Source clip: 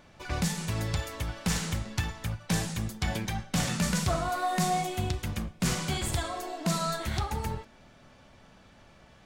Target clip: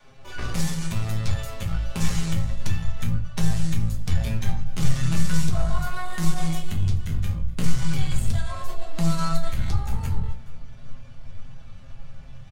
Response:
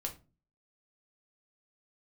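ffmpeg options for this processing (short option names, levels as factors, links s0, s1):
-filter_complex "[0:a]adynamicequalizer=threshold=0.00562:dfrequency=250:dqfactor=1.4:tfrequency=250:tqfactor=1.4:attack=5:release=100:ratio=0.375:range=3.5:mode=cutabove:tftype=bell,aecho=1:1:7.5:0.61,asubboost=boost=6.5:cutoff=130,acompressor=threshold=0.0631:ratio=5,aeval=exprs='(tanh(14.1*val(0)+0.6)-tanh(0.6))/14.1':c=same,atempo=0.74,aecho=1:1:424:0.0794[s0];[1:a]atrim=start_sample=2205[s1];[s0][s1]afir=irnorm=-1:irlink=0,volume=1.68"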